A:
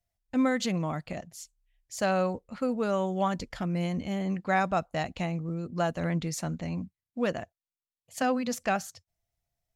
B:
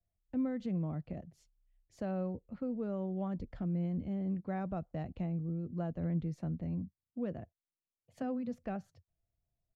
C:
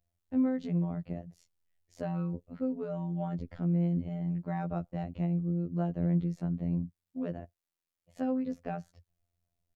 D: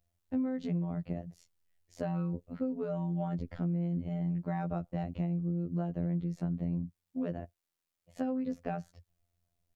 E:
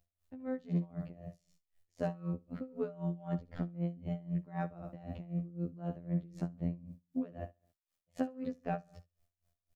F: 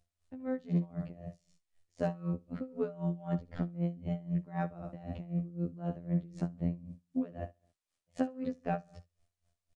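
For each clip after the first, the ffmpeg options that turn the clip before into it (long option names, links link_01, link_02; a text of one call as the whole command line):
ffmpeg -i in.wav -filter_complex "[0:a]firequalizer=gain_entry='entry(350,0);entry(920,-11);entry(7200,-28)':delay=0.05:min_phase=1,acrossover=split=150[link_01][link_02];[link_02]acompressor=threshold=-50dB:ratio=1.5[link_03];[link_01][link_03]amix=inputs=2:normalize=0" out.wav
ffmpeg -i in.wav -af "afftfilt=real='hypot(re,im)*cos(PI*b)':imag='0':win_size=2048:overlap=0.75,volume=6.5dB" out.wav
ffmpeg -i in.wav -af "acompressor=threshold=-32dB:ratio=5,volume=2.5dB" out.wav
ffmpeg -i in.wav -af "aecho=1:1:68|136|204|272:0.335|0.121|0.0434|0.0156,aeval=exprs='val(0)*pow(10,-21*(0.5-0.5*cos(2*PI*3.9*n/s))/20)':channel_layout=same,volume=2dB" out.wav
ffmpeg -i in.wav -af "aresample=22050,aresample=44100,volume=2.5dB" out.wav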